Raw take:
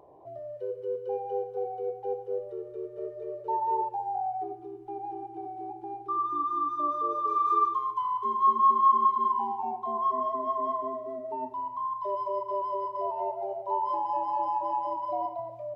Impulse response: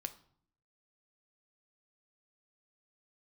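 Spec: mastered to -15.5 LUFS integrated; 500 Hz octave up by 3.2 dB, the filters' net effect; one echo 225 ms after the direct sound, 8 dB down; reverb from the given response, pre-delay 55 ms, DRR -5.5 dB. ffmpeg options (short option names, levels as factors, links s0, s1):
-filter_complex "[0:a]equalizer=f=500:t=o:g=4,aecho=1:1:225:0.398,asplit=2[s0][s1];[1:a]atrim=start_sample=2205,adelay=55[s2];[s1][s2]afir=irnorm=-1:irlink=0,volume=2.37[s3];[s0][s3]amix=inputs=2:normalize=0,volume=2"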